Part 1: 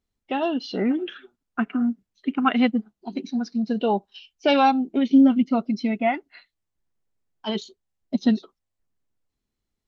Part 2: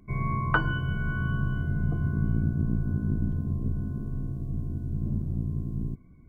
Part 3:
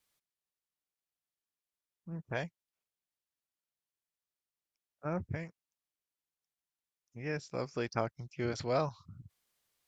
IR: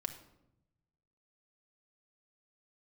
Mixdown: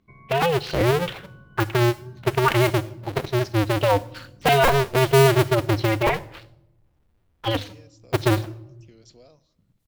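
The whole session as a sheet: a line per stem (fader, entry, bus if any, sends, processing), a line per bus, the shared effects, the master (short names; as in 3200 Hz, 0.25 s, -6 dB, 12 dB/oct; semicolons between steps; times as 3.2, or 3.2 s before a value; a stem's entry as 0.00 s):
+0.5 dB, 0.00 s, bus A, send -8 dB, cycle switcher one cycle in 2, inverted; low shelf 90 Hz +9 dB
-8.5 dB, 0.00 s, bus A, no send, low shelf 160 Hz -10.5 dB; compressor, threshold -38 dBFS, peak gain reduction 17.5 dB
-11.0 dB, 0.50 s, no bus, send -7.5 dB, HPF 160 Hz; compressor 6:1, threshold -40 dBFS, peak gain reduction 13 dB; band shelf 1300 Hz -9.5 dB
bus A: 0.0 dB, LPF 3700 Hz 12 dB/oct; limiter -14 dBFS, peak gain reduction 8 dB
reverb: on, RT60 0.85 s, pre-delay 4 ms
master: high shelf 4100 Hz +10.5 dB; record warp 45 rpm, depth 100 cents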